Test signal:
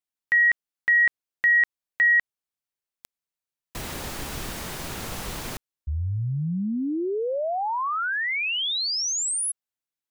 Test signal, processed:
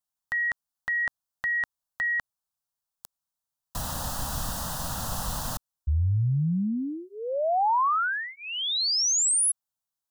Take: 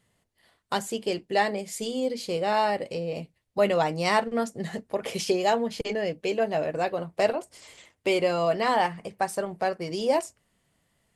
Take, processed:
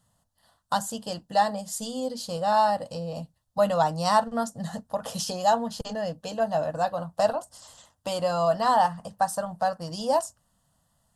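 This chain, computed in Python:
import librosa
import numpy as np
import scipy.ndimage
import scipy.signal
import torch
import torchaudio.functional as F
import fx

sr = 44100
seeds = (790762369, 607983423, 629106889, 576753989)

y = fx.fixed_phaser(x, sr, hz=930.0, stages=4)
y = y * 10.0 ** (4.0 / 20.0)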